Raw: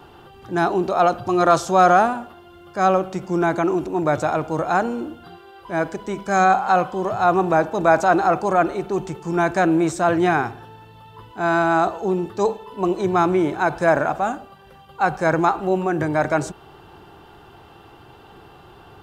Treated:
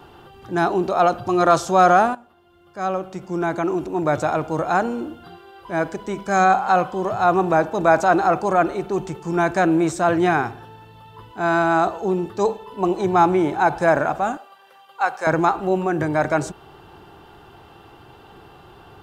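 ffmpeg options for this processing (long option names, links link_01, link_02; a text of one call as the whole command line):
ffmpeg -i in.wav -filter_complex "[0:a]asettb=1/sr,asplit=3[link_01][link_02][link_03];[link_01]atrim=end=12.824[link_04];[link_02]atrim=start=12.82:end=13.86,asetpts=PTS-STARTPTS,afade=type=in:duration=0.004:curve=qsin,afade=type=out:start_time=1.036:duration=0.004:curve=qsin,equalizer=frequency=810:width=7.3:gain=9.5[link_05];[link_03]atrim=start=13.856[link_06];[link_04][link_05]acrossfade=duration=0.004:curve1=hsin:curve2=qsin[link_07];[link_07][link_06]acrossfade=duration=0.004:curve1=qsin:curve2=hsin,asettb=1/sr,asplit=3[link_08][link_09][link_10];[link_08]atrim=end=14.374[link_11];[link_09]atrim=start=14.37:end=15.27,asetpts=PTS-STARTPTS,afade=type=in:duration=0.004:curve=qsin,afade=type=out:start_time=0.896:duration=0.004:curve=qsin,highpass=630[link_12];[link_10]atrim=start=15.266[link_13];[link_11][link_12]acrossfade=duration=0.004:curve1=hsin:curve2=qsin[link_14];[link_14][link_13]acrossfade=duration=0.004:curve1=qsin:curve2=hsin,asplit=2[link_15][link_16];[link_15]atrim=end=2.15,asetpts=PTS-STARTPTS,afade=type=out:start_time=2.146:duration=0.004:curve=hsin:silence=0.158489[link_17];[link_16]atrim=start=2.15,asetpts=PTS-STARTPTS,afade=type=in:duration=2.05:silence=0.158489[link_18];[link_17][link_18]concat=n=2:v=0:a=1" out.wav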